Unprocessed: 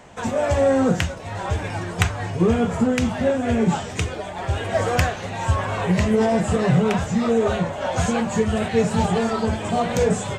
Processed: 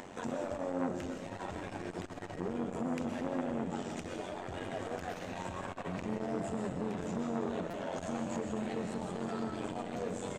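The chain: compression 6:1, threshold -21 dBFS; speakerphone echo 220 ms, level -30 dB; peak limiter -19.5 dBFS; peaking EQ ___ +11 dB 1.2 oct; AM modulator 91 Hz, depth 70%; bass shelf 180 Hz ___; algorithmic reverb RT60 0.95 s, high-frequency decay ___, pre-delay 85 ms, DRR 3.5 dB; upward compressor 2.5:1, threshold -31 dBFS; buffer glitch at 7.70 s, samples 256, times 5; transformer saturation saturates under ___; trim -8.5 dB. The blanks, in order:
270 Hz, -7 dB, 1×, 770 Hz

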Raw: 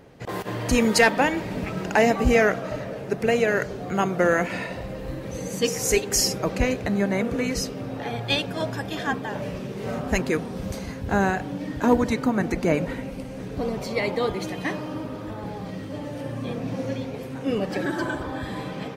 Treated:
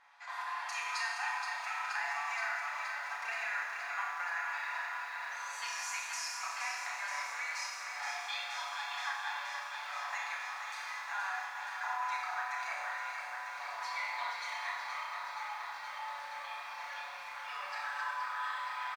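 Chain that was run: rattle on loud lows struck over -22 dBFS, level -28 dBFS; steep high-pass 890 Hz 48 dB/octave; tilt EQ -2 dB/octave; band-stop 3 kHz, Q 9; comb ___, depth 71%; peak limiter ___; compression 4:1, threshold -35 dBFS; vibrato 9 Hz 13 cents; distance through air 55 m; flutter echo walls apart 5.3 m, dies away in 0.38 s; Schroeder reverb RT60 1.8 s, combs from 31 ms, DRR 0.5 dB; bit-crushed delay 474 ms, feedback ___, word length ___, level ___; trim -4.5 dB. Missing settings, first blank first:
7 ms, -12 dBFS, 80%, 10-bit, -7 dB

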